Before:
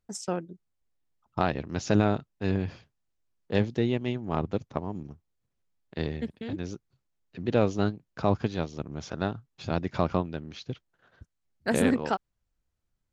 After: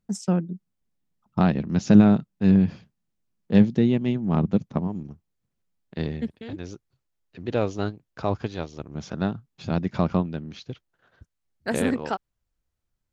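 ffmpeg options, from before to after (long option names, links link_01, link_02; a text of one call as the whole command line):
ffmpeg -i in.wav -af "asetnsamples=nb_out_samples=441:pad=0,asendcmd='4.87 equalizer g 6.5;6.27 equalizer g -3.5;8.95 equalizer g 8;10.59 equalizer g -1',equalizer=frequency=190:width_type=o:width=0.89:gain=14.5" out.wav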